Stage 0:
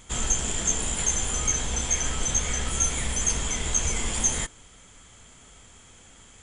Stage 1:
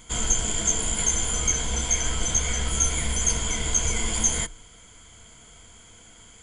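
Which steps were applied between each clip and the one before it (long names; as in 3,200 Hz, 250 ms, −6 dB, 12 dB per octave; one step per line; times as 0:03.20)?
EQ curve with evenly spaced ripples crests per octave 1.8, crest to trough 8 dB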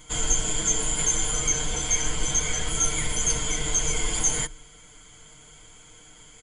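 comb filter 6.6 ms, depth 74%
level −2 dB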